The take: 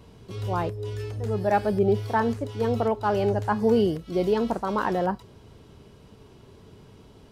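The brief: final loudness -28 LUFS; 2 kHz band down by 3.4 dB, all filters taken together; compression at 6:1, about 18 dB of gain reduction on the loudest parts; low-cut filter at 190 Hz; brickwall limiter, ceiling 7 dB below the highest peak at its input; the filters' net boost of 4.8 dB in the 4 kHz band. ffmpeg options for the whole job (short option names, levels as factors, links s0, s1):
-af "highpass=190,equalizer=f=2000:t=o:g=-6.5,equalizer=f=4000:t=o:g=9,acompressor=threshold=0.0126:ratio=6,volume=6.31,alimiter=limit=0.141:level=0:latency=1"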